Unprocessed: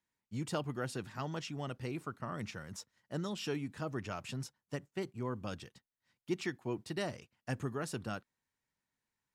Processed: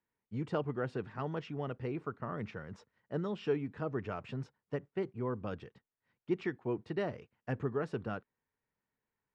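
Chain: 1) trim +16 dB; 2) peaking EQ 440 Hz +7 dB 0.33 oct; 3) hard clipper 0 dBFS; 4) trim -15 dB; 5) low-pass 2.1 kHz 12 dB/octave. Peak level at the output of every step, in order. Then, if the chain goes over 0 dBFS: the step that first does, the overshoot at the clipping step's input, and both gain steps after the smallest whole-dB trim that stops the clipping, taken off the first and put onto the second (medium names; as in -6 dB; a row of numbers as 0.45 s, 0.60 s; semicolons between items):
-6.5 dBFS, -5.5 dBFS, -5.5 dBFS, -20.5 dBFS, -21.0 dBFS; nothing clips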